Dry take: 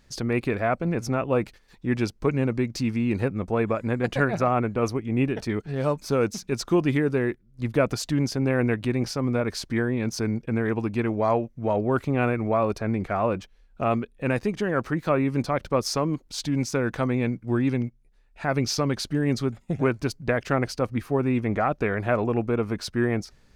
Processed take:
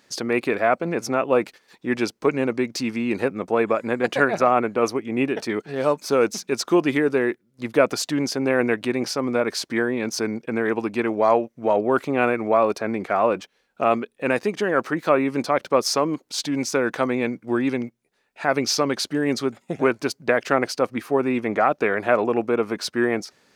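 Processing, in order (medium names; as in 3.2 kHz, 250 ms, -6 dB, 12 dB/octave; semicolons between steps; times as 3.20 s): high-pass 300 Hz 12 dB/octave; trim +5.5 dB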